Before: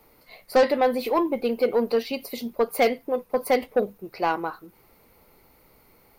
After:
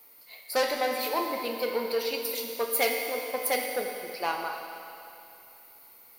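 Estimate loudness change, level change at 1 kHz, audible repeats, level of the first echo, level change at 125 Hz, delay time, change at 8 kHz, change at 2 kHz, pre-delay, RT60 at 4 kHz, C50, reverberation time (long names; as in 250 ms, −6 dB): −4.5 dB, −4.5 dB, no echo audible, no echo audible, below −10 dB, no echo audible, +7.0 dB, 0.0 dB, 11 ms, 2.7 s, 3.5 dB, 2.7 s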